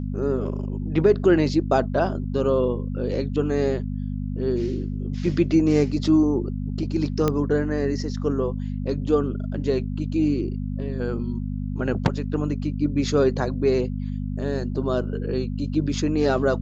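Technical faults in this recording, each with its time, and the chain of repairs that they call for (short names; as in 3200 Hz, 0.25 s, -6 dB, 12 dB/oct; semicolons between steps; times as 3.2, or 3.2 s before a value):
hum 50 Hz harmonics 5 -28 dBFS
7.28 pop -9 dBFS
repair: de-click; de-hum 50 Hz, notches 5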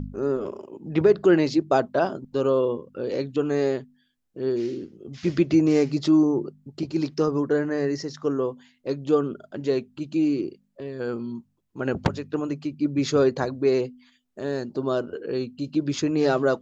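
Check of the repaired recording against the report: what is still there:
none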